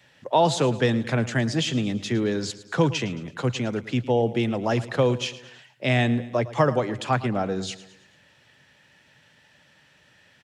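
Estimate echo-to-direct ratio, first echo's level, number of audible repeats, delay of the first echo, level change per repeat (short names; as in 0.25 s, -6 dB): -15.0 dB, -16.5 dB, 4, 0.11 s, -6.0 dB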